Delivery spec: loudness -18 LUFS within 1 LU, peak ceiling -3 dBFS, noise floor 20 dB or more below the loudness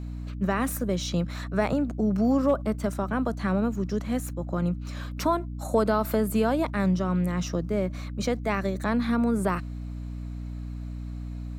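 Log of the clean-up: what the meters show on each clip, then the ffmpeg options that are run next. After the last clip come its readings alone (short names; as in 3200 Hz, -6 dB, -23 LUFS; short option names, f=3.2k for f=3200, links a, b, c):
hum 60 Hz; harmonics up to 300 Hz; hum level -32 dBFS; loudness -27.5 LUFS; peak -10.5 dBFS; loudness target -18.0 LUFS
-> -af "bandreject=f=60:t=h:w=6,bandreject=f=120:t=h:w=6,bandreject=f=180:t=h:w=6,bandreject=f=240:t=h:w=6,bandreject=f=300:t=h:w=6"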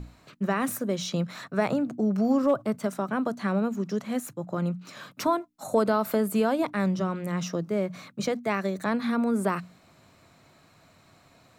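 hum none; loudness -28.0 LUFS; peak -10.5 dBFS; loudness target -18.0 LUFS
-> -af "volume=10dB,alimiter=limit=-3dB:level=0:latency=1"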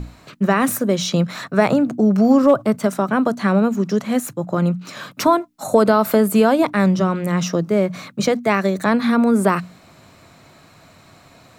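loudness -18.0 LUFS; peak -3.0 dBFS; noise floor -49 dBFS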